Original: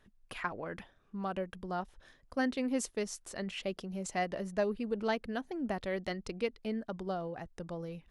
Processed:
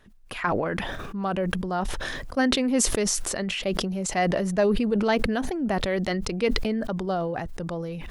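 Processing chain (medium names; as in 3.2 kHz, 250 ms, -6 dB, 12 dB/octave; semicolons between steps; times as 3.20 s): decay stretcher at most 21 dB/s; trim +8.5 dB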